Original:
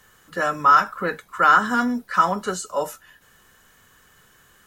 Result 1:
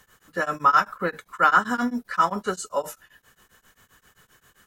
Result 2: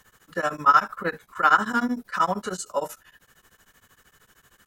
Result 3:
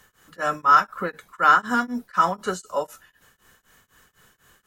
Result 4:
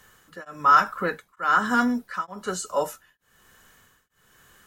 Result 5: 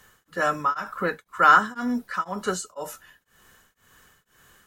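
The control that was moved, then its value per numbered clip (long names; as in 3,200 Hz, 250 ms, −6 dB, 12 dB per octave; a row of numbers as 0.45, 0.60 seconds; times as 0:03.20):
tremolo along a rectified sine, nulls at: 7.6, 13, 4, 1.1, 2 Hertz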